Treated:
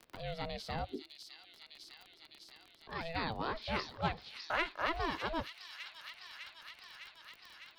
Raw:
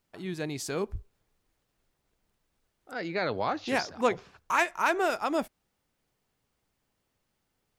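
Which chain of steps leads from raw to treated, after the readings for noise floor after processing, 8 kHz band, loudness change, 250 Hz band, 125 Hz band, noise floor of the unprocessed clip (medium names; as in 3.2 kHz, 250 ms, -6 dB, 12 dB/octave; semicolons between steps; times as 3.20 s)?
-63 dBFS, -16.5 dB, -9.5 dB, -9.5 dB, -2.5 dB, -79 dBFS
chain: resonant high shelf 5.4 kHz -10 dB, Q 3; ring modulator 330 Hz; feedback echo behind a high-pass 605 ms, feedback 66%, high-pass 3.9 kHz, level -3.5 dB; crackle 36 per s -44 dBFS; three bands compressed up and down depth 40%; trim -5 dB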